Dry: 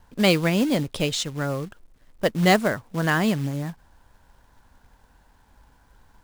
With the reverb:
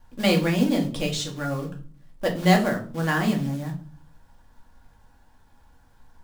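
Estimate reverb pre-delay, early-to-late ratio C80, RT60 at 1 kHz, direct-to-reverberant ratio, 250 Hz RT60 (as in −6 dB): 4 ms, 16.5 dB, 0.40 s, −0.5 dB, 0.70 s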